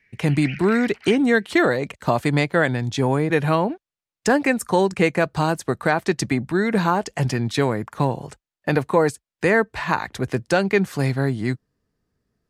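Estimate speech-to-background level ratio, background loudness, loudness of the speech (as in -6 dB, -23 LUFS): 15.5 dB, -37.0 LUFS, -21.5 LUFS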